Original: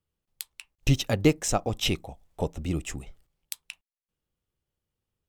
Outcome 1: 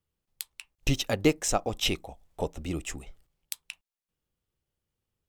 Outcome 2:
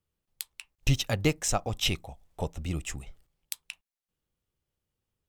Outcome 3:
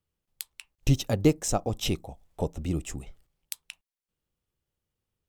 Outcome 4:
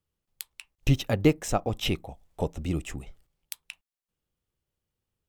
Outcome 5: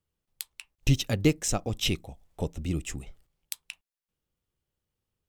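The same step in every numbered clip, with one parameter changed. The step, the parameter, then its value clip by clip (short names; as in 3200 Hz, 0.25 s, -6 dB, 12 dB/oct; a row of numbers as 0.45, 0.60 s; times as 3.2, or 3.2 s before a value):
dynamic EQ, frequency: 120, 320, 2200, 6400, 840 Hz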